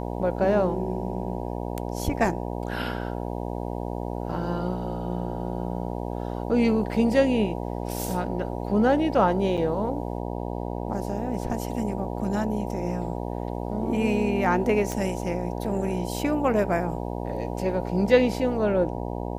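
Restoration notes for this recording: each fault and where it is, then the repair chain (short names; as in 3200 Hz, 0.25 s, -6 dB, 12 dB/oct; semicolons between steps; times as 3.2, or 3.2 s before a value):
buzz 60 Hz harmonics 16 -31 dBFS
9.57–9.58 gap 7 ms
14.92 pop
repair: de-click; de-hum 60 Hz, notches 16; interpolate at 9.57, 7 ms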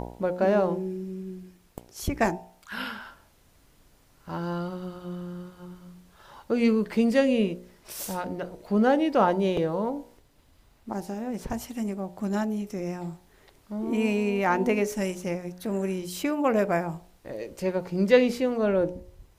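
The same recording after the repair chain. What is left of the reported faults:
none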